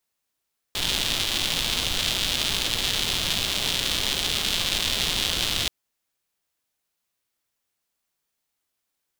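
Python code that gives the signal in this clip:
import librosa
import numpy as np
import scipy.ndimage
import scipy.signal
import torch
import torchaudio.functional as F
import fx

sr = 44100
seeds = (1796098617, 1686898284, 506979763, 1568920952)

y = fx.rain(sr, seeds[0], length_s=4.93, drops_per_s=240.0, hz=3400.0, bed_db=-5.5)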